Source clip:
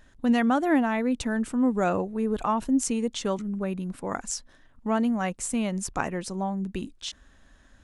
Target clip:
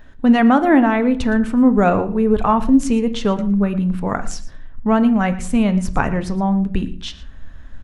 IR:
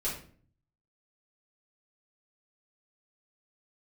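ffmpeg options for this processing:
-filter_complex "[0:a]equalizer=f=8.3k:w=0.65:g=-12,asplit=2[a][b];[1:a]atrim=start_sample=2205,lowpass=5.7k[c];[b][c]afir=irnorm=-1:irlink=0,volume=-12.5dB[d];[a][d]amix=inputs=2:normalize=0,asubboost=boost=3:cutoff=160,asplit=2[e][f];[f]aecho=0:1:115:0.126[g];[e][g]amix=inputs=2:normalize=0,volume=8.5dB"

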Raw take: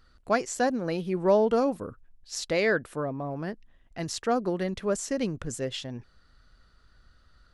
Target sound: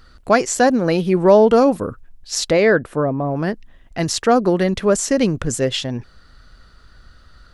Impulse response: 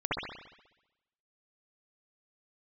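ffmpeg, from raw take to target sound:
-filter_complex "[0:a]asettb=1/sr,asplit=3[a][b][c];[a]atrim=end=2.514[d];[b]atrim=start=2.51:end=3.35,asetpts=PTS-STARTPTS,afade=t=in:d=0.004:c=qsin,afade=t=out:st=0.836:d=0.004:c=qsin,highshelf=f=2.1k:g=-10[e];[c]atrim=start=3.346[f];[d][e]acrossfade=d=0.004:c1=hsin:c2=qsin[g];[g][f]acrossfade=d=0.004:c1=qsin:c2=hsin,asplit=2[h][i];[i]alimiter=limit=-19.5dB:level=0:latency=1,volume=-2dB[j];[h][j]amix=inputs=2:normalize=0,volume=7.5dB"

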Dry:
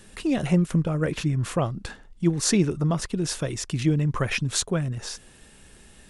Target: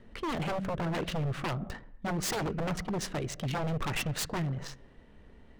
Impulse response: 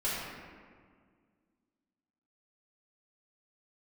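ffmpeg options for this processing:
-filter_complex "[0:a]asetrate=48000,aresample=44100,asplit=2[a][b];[1:a]atrim=start_sample=2205,afade=t=out:st=0.33:d=0.01,atrim=end_sample=14994[c];[b][c]afir=irnorm=-1:irlink=0,volume=-23.5dB[d];[a][d]amix=inputs=2:normalize=0,adynamicsmooth=sensitivity=6:basefreq=1.6k,aeval=exprs='0.0668*(abs(mod(val(0)/0.0668+3,4)-2)-1)':c=same,volume=-3dB"

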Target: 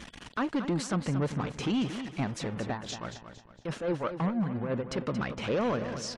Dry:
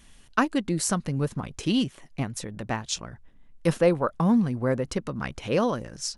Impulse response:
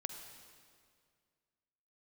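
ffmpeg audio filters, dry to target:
-filter_complex "[0:a]aeval=exprs='val(0)+0.5*0.0188*sgn(val(0))':c=same,highpass=f=160:p=1,alimiter=limit=-18.5dB:level=0:latency=1:release=89,asoftclip=type=hard:threshold=-24.5dB,asettb=1/sr,asplit=3[a][b][c];[a]atrim=end=2.724[d];[b]atrim=start=2.72:end=4.98,asetpts=PTS-STARTPTS,afade=t=in:d=0.004:c=qsin,afade=t=out:st=2.256:d=0.004:c=qsin,tremolo=f=5.9:d=0.6[e];[c]atrim=start=4.976[f];[d][e]acrossfade=d=0.004:c1=hsin:c2=qsin[g];[g][f]acrossfade=d=0.004:c1=qsin:c2=hsin,afftfilt=real='re*gte(hypot(re,im),0.00316)':imag='im*gte(hypot(re,im),0.00316)':win_size=1024:overlap=0.75,lowpass=8.1k,aemphasis=mode=reproduction:type=50fm,aecho=1:1:229|458|687|916:0.316|0.117|0.0433|0.016"

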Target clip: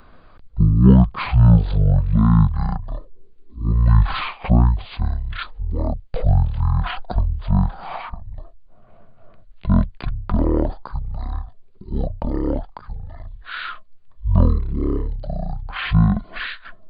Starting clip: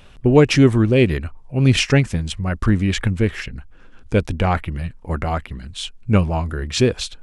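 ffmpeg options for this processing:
-filter_complex "[0:a]asetrate=18846,aresample=44100,acrossover=split=490|3000[a][b][c];[b]acompressor=threshold=-27dB:ratio=6[d];[a][d][c]amix=inputs=3:normalize=0"

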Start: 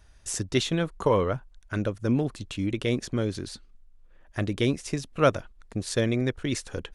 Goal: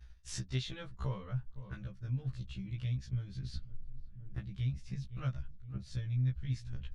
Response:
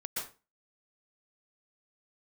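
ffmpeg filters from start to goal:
-filter_complex "[0:a]areverse,acompressor=mode=upward:threshold=-27dB:ratio=2.5,areverse,firequalizer=gain_entry='entry(110,0);entry(210,-7);entry(310,-14);entry(1600,-6);entry(4400,-4);entry(8700,-17)':delay=0.05:min_phase=1,agate=range=-33dB:threshold=-37dB:ratio=3:detection=peak,asplit=2[a][b];[b]adelay=514,lowpass=f=1.2k:p=1,volume=-21dB,asplit=2[c][d];[d]adelay=514,lowpass=f=1.2k:p=1,volume=0.54,asplit=2[e][f];[f]adelay=514,lowpass=f=1.2k:p=1,volume=0.54,asplit=2[g][h];[h]adelay=514,lowpass=f=1.2k:p=1,volume=0.54[i];[c][e][g][i]amix=inputs=4:normalize=0[j];[a][j]amix=inputs=2:normalize=0,asubboost=boost=9.5:cutoff=130,acompressor=threshold=-39dB:ratio=6,afftfilt=real='re*1.73*eq(mod(b,3),0)':imag='im*1.73*eq(mod(b,3),0)':win_size=2048:overlap=0.75,volume=6dB"

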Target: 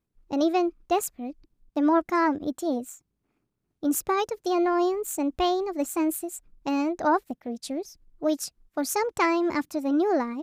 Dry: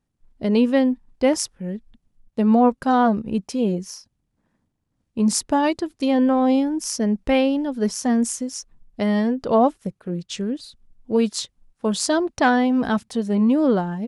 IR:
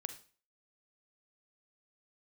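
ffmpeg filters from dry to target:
-af "asetrate=59535,aresample=44100,volume=-5.5dB"

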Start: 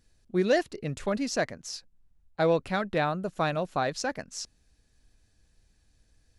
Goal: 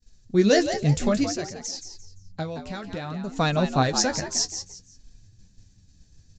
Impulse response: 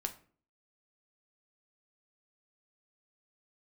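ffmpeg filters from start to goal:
-filter_complex "[0:a]agate=range=-33dB:threshold=-59dB:ratio=3:detection=peak,bass=f=250:g=10,treble=f=4k:g=14,asettb=1/sr,asplit=3[a][b][c];[a]atrim=end=1.244[d];[b]atrim=start=1.24:end=3.32,asetpts=PTS-STARTPTS,afade=t=in:d=0.004:c=qsin,afade=t=out:st=2.076:d=0.004:c=qsin,acompressor=threshold=-33dB:ratio=6[e];[c]atrim=start=3.316[f];[d][e]acrossfade=d=0.004:c1=hsin:c2=qsin[g];[g][f]acrossfade=d=0.004:c1=qsin:c2=hsin,flanger=delay=4.2:depth=9.4:regen=39:speed=0.58:shape=sinusoidal,asplit=4[h][i][j][k];[i]adelay=172,afreqshift=87,volume=-9dB[l];[j]adelay=344,afreqshift=174,volume=-19.5dB[m];[k]adelay=516,afreqshift=261,volume=-29.9dB[n];[h][l][m][n]amix=inputs=4:normalize=0,aresample=16000,aresample=44100,volume=6.5dB"

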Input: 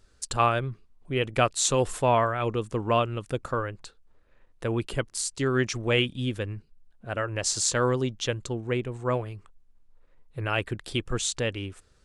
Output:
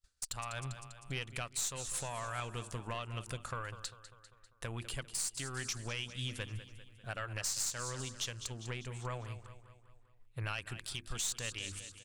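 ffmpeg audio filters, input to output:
-af "acompressor=threshold=-27dB:ratio=10,bandreject=f=50:t=h:w=6,bandreject=f=100:t=h:w=6,bandreject=f=150:t=h:w=6,bandreject=f=200:t=h:w=6,bandreject=f=250:t=h:w=6,bandreject=f=300:t=h:w=6,bandreject=f=350:t=h:w=6,agate=range=-33dB:threshold=-48dB:ratio=3:detection=peak,asetnsamples=n=441:p=0,asendcmd='9.15 highshelf g 3.5;10.47 highshelf g 11.5',highshelf=f=3.2k:g=10,aecho=1:1:198|396|594|792|990:0.178|0.0942|0.05|0.0265|0.014,aeval=exprs='(tanh(7.08*val(0)+0.5)-tanh(0.5))/7.08':c=same,alimiter=level_in=1dB:limit=-24dB:level=0:latency=1:release=413,volume=-1dB,equalizer=f=360:t=o:w=1.7:g=-10.5"

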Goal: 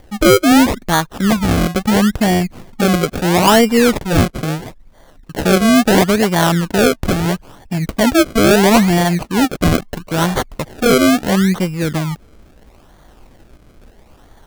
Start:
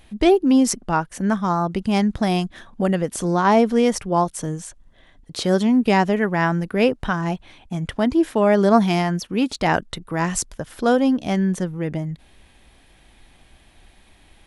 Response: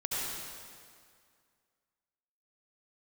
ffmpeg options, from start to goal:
-af "acrusher=samples=33:mix=1:aa=0.000001:lfo=1:lforange=33:lforate=0.75,acontrast=83"

